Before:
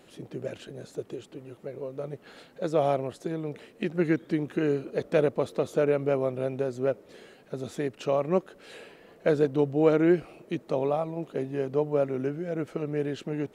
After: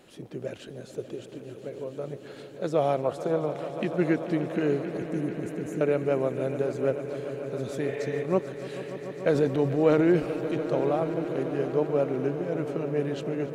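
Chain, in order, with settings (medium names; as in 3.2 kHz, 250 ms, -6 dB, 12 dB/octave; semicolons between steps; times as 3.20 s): 3.05–3.72 s: time-frequency box 460–1500 Hz +11 dB; 4.97–5.81 s: elliptic band-stop 330–6500 Hz; 7.90–8.20 s: spectral replace 430–3800 Hz before; 9.31–10.55 s: transient shaper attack -2 dB, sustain +7 dB; echo with a slow build-up 146 ms, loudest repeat 5, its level -15.5 dB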